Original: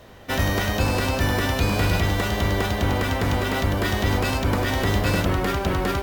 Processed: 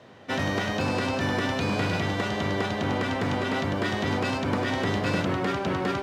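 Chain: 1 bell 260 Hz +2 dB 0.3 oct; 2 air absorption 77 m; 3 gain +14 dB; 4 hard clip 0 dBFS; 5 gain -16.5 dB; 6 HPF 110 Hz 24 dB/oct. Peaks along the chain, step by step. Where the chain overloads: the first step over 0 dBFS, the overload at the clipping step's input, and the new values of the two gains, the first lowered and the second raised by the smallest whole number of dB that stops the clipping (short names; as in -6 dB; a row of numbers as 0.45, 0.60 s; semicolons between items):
-9.0, -9.5, +4.5, 0.0, -16.5, -13.0 dBFS; step 3, 4.5 dB; step 3 +9 dB, step 5 -11.5 dB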